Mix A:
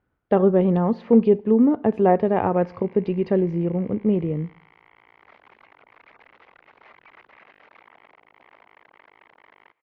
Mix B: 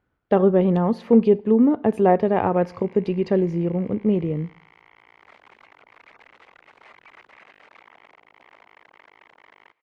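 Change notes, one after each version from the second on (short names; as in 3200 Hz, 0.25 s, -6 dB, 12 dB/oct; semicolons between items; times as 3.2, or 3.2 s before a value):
master: remove air absorption 190 m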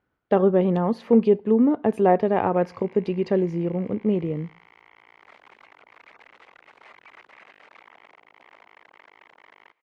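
speech: send -9.0 dB; master: add low shelf 110 Hz -8 dB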